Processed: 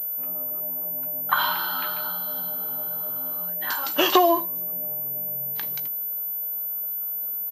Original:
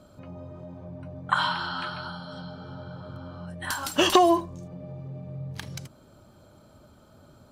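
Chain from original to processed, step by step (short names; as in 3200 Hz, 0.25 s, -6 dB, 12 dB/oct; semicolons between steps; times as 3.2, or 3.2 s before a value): HPF 320 Hz 12 dB/oct; doubler 16 ms -11 dB; pulse-width modulation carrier 14000 Hz; gain +1.5 dB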